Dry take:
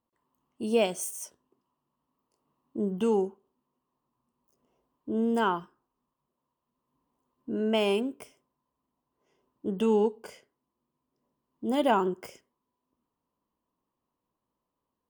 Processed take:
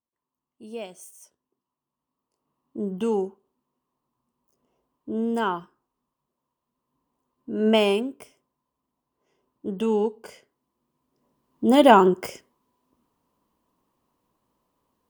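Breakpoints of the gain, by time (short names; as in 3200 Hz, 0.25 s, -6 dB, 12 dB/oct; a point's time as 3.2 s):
1.12 s -11 dB
2.92 s +1 dB
7.53 s +1 dB
7.68 s +8.5 dB
8.09 s +1 dB
10.11 s +1 dB
11.64 s +10.5 dB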